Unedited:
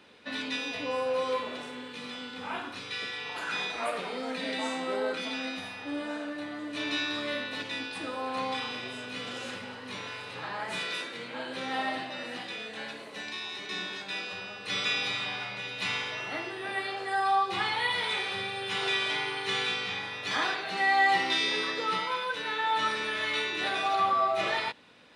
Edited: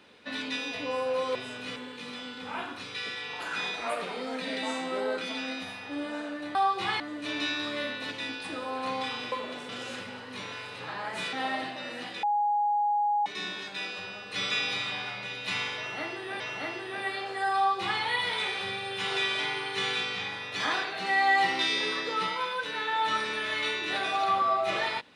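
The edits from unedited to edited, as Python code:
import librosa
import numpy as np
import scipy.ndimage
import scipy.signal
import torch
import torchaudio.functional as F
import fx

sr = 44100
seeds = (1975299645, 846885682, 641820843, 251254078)

y = fx.edit(x, sr, fx.swap(start_s=1.35, length_s=0.37, other_s=8.83, other_length_s=0.41),
    fx.cut(start_s=10.88, length_s=0.79),
    fx.bleep(start_s=12.57, length_s=1.03, hz=828.0, db=-23.0),
    fx.repeat(start_s=16.11, length_s=0.63, count=2),
    fx.duplicate(start_s=17.27, length_s=0.45, to_s=6.51), tone=tone)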